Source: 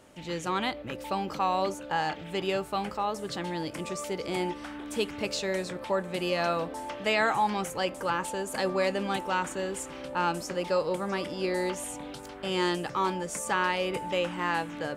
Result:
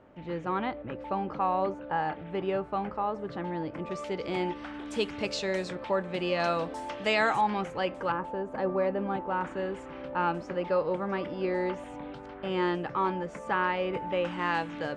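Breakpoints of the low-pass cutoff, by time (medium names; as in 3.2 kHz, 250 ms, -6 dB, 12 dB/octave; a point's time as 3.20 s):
1.6 kHz
from 3.91 s 3.5 kHz
from 4.74 s 5.9 kHz
from 5.75 s 3.6 kHz
from 6.40 s 7 kHz
from 7.41 s 2.8 kHz
from 8.12 s 1.2 kHz
from 9.41 s 2.1 kHz
from 14.25 s 4.7 kHz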